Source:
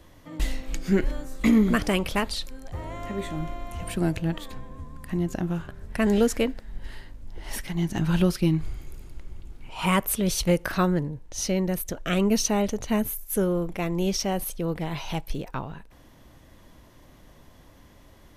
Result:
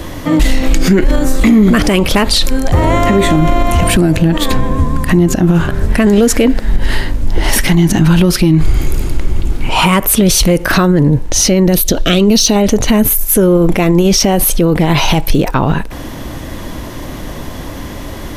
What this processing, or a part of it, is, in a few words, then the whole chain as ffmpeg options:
mastering chain: -filter_complex "[0:a]asettb=1/sr,asplit=3[link_01][link_02][link_03];[link_01]atrim=end=11.724[link_04];[link_02]atrim=start=11.72:end=12.56,asetpts=PTS-STARTPTS,afade=type=in:duration=0.004:curve=qsin,afade=type=out:start_time=0.836:duration=0.004:curve=qsin,equalizer=frequency=125:width_type=o:width=1:gain=-4,equalizer=frequency=1000:width_type=o:width=1:gain=-5,equalizer=frequency=2000:width_type=o:width=1:gain=-6,equalizer=frequency=4000:width_type=o:width=1:gain=11,equalizer=frequency=8000:width_type=o:width=1:gain=-4[link_05];[link_03]atrim=start=12.556[link_06];[link_04][link_05]acrossfade=duration=0.004:curve1=hsin:curve2=qsin[link_07];[link_07][link_06]acrossfade=duration=0.004:curve1=qsin:curve2=hsin,equalizer=frequency=300:width_type=o:width=0.85:gain=3,acompressor=threshold=-27dB:ratio=2,asoftclip=type=tanh:threshold=-16dB,alimiter=level_in=28dB:limit=-1dB:release=50:level=0:latency=1,volume=-1dB"

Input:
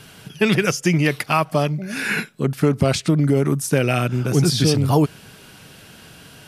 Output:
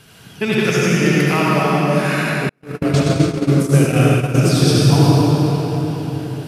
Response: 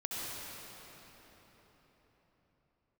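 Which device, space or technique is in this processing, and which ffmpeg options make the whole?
cathedral: -filter_complex "[1:a]atrim=start_sample=2205[link_01];[0:a][link_01]afir=irnorm=-1:irlink=0,asettb=1/sr,asplit=3[link_02][link_03][link_04];[link_02]atrim=end=2.494[link_05];[link_03]atrim=start=2.49:end=4.37,asetpts=PTS-STARTPTS,afade=type=in:duration=0.004:curve=qsin,afade=type=out:start_time=1.876:duration=0.004:curve=qsin,agate=range=-45dB:threshold=-13dB:ratio=16:detection=peak[link_06];[link_04]atrim=start=4.366[link_07];[link_05][link_06]acrossfade=duration=0.004:curve1=hsin:curve2=qsin[link_08];[link_08][link_07]acrossfade=duration=0.004:curve1=qsin:curve2=hsin"

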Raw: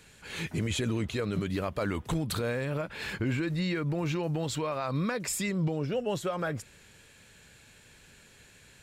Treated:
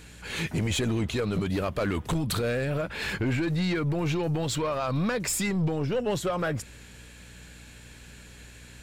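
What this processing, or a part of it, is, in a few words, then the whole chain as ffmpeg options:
valve amplifier with mains hum: -af "aeval=exprs='(tanh(22.4*val(0)+0.15)-tanh(0.15))/22.4':channel_layout=same,aeval=exprs='val(0)+0.00178*(sin(2*PI*60*n/s)+sin(2*PI*2*60*n/s)/2+sin(2*PI*3*60*n/s)/3+sin(2*PI*4*60*n/s)/4+sin(2*PI*5*60*n/s)/5)':channel_layout=same,volume=6dB"

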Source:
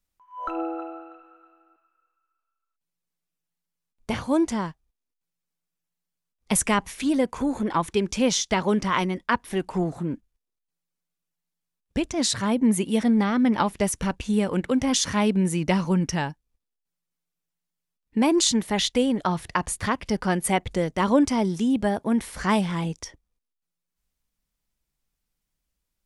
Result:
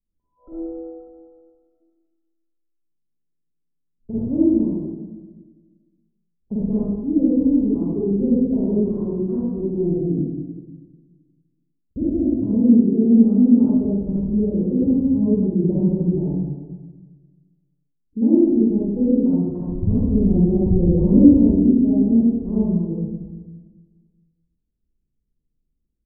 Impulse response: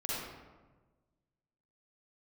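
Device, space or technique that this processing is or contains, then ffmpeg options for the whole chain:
next room: -filter_complex "[0:a]asettb=1/sr,asplit=3[link_01][link_02][link_03];[link_01]atrim=end=19.694[link_04];[link_02]atrim=start=19.69:end=21.31,asetpts=PTS-STARTPTS,afade=type=in:duration=0.004:curve=qsin,afade=type=out:start_time=1.616:duration=0.004:curve=qsin,aemphasis=mode=reproduction:type=bsi[link_05];[link_03]atrim=start=21.306[link_06];[link_04][link_05]acrossfade=duration=0.004:curve1=hsin:curve2=qsin[link_07];[link_07][link_06]acrossfade=duration=0.004:curve1=qsin:curve2=hsin,lowpass=frequency=400:width=0.5412,lowpass=frequency=400:width=1.3066,aecho=1:1:93:0.266[link_08];[1:a]atrim=start_sample=2205[link_09];[link_08][link_09]afir=irnorm=-1:irlink=0,volume=1dB"

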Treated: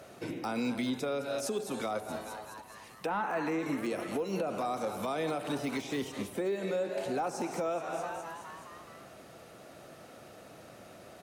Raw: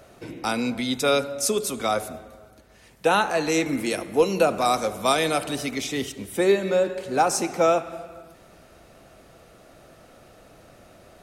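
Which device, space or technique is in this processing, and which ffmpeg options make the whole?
podcast mastering chain: -filter_complex "[0:a]asettb=1/sr,asplit=3[link_01][link_02][link_03];[link_01]atrim=end=3.064[link_04];[link_02]atrim=start=3.06:end=3.59,asetpts=PTS-STARTPTS,afade=type=in:duration=0.004:curve=qsin,afade=type=out:start_time=0.526:duration=0.004:curve=qsin,equalizer=frequency=250:width_type=o:width=1:gain=5,equalizer=frequency=500:width_type=o:width=1:gain=-3,equalizer=frequency=1000:width_type=o:width=1:gain=8,equalizer=frequency=2000:width_type=o:width=1:gain=6,equalizer=frequency=4000:width_type=o:width=1:gain=-8,equalizer=frequency=8000:width_type=o:width=1:gain=-5[link_05];[link_03]atrim=start=3.586[link_06];[link_04][link_05]acrossfade=duration=0.004:curve1=hsin:curve2=qsin[link_07];[link_07][link_06]acrossfade=duration=0.004:curve1=qsin:curve2=hsin,asplit=7[link_08][link_09][link_10][link_11][link_12][link_13][link_14];[link_09]adelay=211,afreqshift=110,volume=-18.5dB[link_15];[link_10]adelay=422,afreqshift=220,volume=-22.2dB[link_16];[link_11]adelay=633,afreqshift=330,volume=-26dB[link_17];[link_12]adelay=844,afreqshift=440,volume=-29.7dB[link_18];[link_13]adelay=1055,afreqshift=550,volume=-33.5dB[link_19];[link_14]adelay=1266,afreqshift=660,volume=-37.2dB[link_20];[link_08][link_15][link_16][link_17][link_18][link_19][link_20]amix=inputs=7:normalize=0,highpass=110,deesser=0.95,acompressor=threshold=-28dB:ratio=2,alimiter=limit=-24dB:level=0:latency=1:release=213" -ar 44100 -c:a libmp3lame -b:a 112k

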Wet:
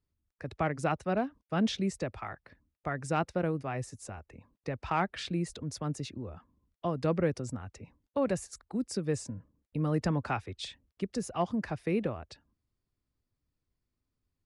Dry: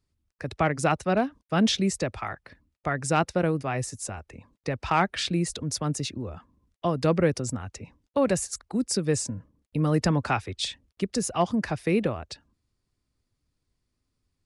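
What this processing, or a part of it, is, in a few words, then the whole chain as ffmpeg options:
behind a face mask: -af "highshelf=frequency=3400:gain=-8,volume=-6dB"

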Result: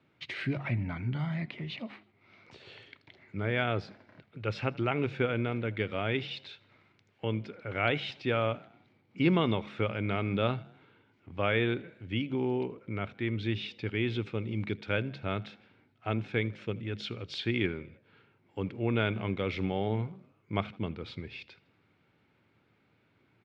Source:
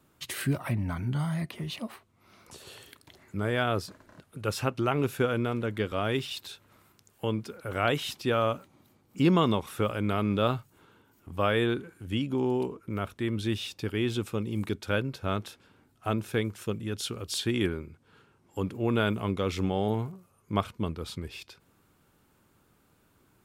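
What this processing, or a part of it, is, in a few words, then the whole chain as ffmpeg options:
frequency-shifting delay pedal into a guitar cabinet: -filter_complex "[0:a]bandreject=frequency=69.6:width_type=h:width=4,bandreject=frequency=139.2:width_type=h:width=4,bandreject=frequency=208.8:width_type=h:width=4,asplit=5[link_01][link_02][link_03][link_04][link_05];[link_02]adelay=80,afreqshift=44,volume=-23.5dB[link_06];[link_03]adelay=160,afreqshift=88,volume=-28.9dB[link_07];[link_04]adelay=240,afreqshift=132,volume=-34.2dB[link_08];[link_05]adelay=320,afreqshift=176,volume=-39.6dB[link_09];[link_01][link_06][link_07][link_08][link_09]amix=inputs=5:normalize=0,highpass=96,equalizer=frequency=110:width_type=q:width=4:gain=5,equalizer=frequency=1100:width_type=q:width=4:gain=-5,equalizer=frequency=2200:width_type=q:width=4:gain=9,lowpass=frequency=4200:width=0.5412,lowpass=frequency=4200:width=1.3066,volume=-3dB"

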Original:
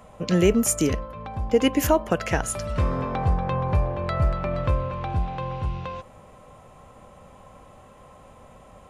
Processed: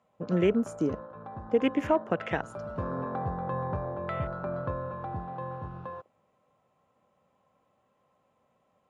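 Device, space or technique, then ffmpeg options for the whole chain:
over-cleaned archive recording: -af "highpass=140,lowpass=6300,afwtdn=0.0251,volume=-5dB"

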